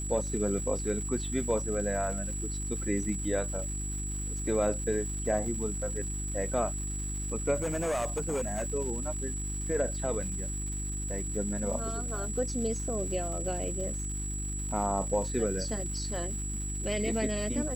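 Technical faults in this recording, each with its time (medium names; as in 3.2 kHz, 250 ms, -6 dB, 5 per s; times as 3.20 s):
crackle 490 per s -41 dBFS
hum 50 Hz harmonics 7 -36 dBFS
whine 7.8 kHz -37 dBFS
7.55–8.66 s: clipped -27 dBFS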